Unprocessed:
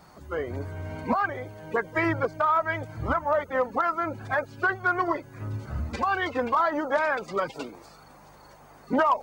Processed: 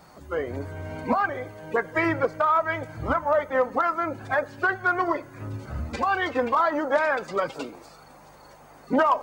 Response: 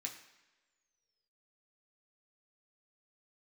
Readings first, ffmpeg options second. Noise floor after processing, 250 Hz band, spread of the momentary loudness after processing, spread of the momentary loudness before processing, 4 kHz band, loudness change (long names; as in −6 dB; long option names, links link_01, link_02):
−50 dBFS, +1.5 dB, 12 LU, 11 LU, +1.5 dB, +2.0 dB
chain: -filter_complex "[0:a]equalizer=frequency=540:width=1.9:gain=2.5,asplit=2[link_01][link_02];[1:a]atrim=start_sample=2205[link_03];[link_02][link_03]afir=irnorm=-1:irlink=0,volume=-8.5dB[link_04];[link_01][link_04]amix=inputs=2:normalize=0"